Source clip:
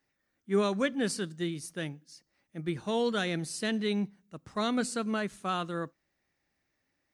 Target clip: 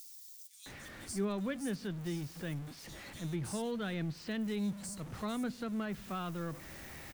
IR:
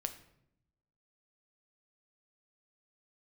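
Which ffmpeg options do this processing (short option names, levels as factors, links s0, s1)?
-filter_complex "[0:a]aeval=exprs='val(0)+0.5*0.0141*sgn(val(0))':c=same,acrossover=split=4700[s0][s1];[s0]adelay=660[s2];[s2][s1]amix=inputs=2:normalize=0,acrossover=split=170[s3][s4];[s4]acompressor=threshold=0.00158:ratio=1.5[s5];[s3][s5]amix=inputs=2:normalize=0"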